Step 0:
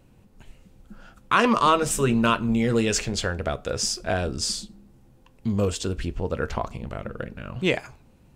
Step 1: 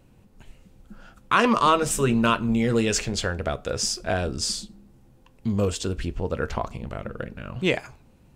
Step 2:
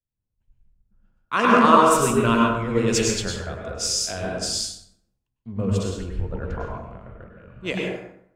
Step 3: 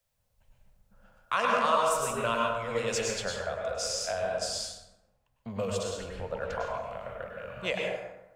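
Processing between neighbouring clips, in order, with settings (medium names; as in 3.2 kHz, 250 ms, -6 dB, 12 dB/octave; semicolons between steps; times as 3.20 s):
no audible change
plate-style reverb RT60 1.2 s, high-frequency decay 0.5×, pre-delay 90 ms, DRR -2.5 dB; three bands expanded up and down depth 100%; trim -4.5 dB
resonant low shelf 440 Hz -8 dB, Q 3; three bands compressed up and down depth 70%; trim -6.5 dB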